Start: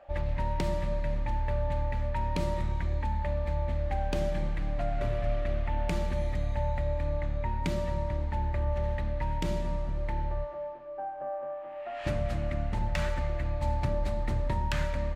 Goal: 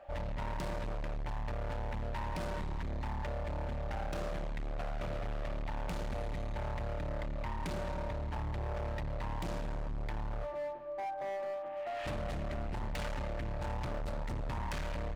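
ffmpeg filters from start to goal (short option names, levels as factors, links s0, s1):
-af "asoftclip=type=hard:threshold=0.0178"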